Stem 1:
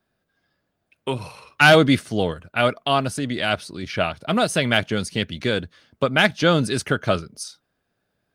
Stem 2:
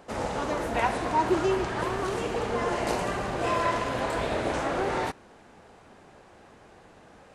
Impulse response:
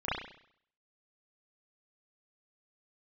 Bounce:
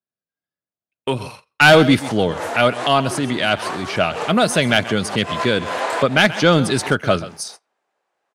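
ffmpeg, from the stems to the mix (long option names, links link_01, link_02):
-filter_complex "[0:a]volume=-2.5dB,asplit=3[link_01][link_02][link_03];[link_02]volume=-17dB[link_04];[1:a]highpass=550,adelay=1800,volume=2dB[link_05];[link_03]apad=whole_len=403297[link_06];[link_05][link_06]sidechaincompress=threshold=-37dB:ratio=12:attack=8.3:release=106[link_07];[link_04]aecho=0:1:131:1[link_08];[link_01][link_07][link_08]amix=inputs=3:normalize=0,highpass=95,agate=range=-28dB:threshold=-43dB:ratio=16:detection=peak,acontrast=82"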